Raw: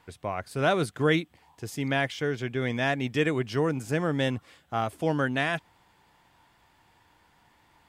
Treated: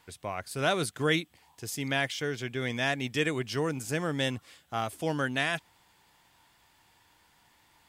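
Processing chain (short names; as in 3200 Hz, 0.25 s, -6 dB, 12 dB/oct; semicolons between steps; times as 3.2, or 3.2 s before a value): high shelf 2800 Hz +11 dB; gain -4.5 dB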